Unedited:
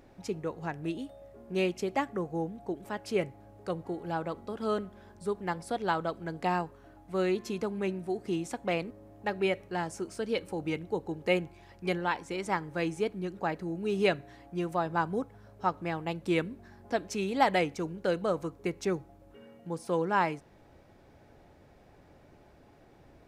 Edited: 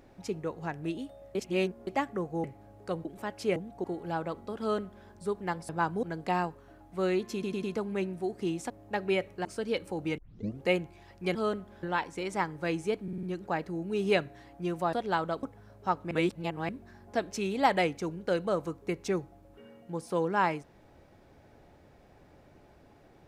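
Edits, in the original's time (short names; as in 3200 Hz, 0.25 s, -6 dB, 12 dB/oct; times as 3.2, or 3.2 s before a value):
1.35–1.87 reverse
2.44–2.72 swap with 3.23–3.84
4.6–5.08 copy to 11.96
5.69–6.19 swap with 14.86–15.2
7.49 stutter 0.10 s, 4 plays
8.56–9.03 cut
9.78–10.06 cut
10.79 tape start 0.45 s
13.16 stutter 0.05 s, 5 plays
15.88–16.46 reverse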